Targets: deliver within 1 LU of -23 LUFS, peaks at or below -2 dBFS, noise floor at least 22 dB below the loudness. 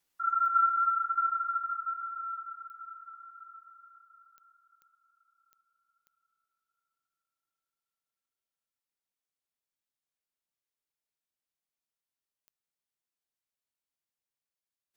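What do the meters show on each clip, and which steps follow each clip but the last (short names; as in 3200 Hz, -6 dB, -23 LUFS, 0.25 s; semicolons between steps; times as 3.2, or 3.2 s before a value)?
clicks 7; loudness -29.0 LUFS; peak -16.5 dBFS; loudness target -23.0 LUFS
-> de-click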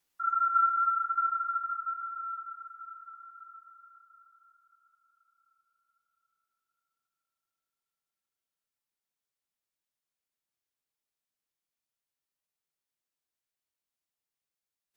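clicks 0; loudness -29.0 LUFS; peak -16.5 dBFS; loudness target -23.0 LUFS
-> gain +6 dB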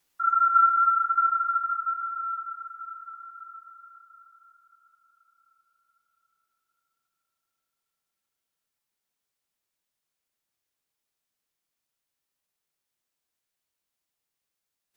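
loudness -23.0 LUFS; peak -10.5 dBFS; noise floor -85 dBFS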